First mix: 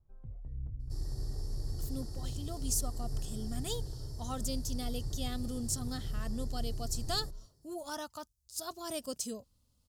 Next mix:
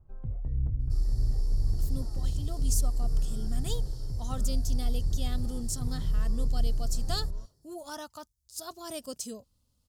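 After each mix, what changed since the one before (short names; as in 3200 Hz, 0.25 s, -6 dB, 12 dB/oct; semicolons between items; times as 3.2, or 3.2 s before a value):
first sound +11.0 dB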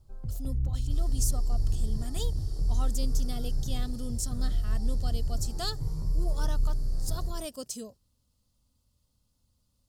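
speech: entry -1.50 s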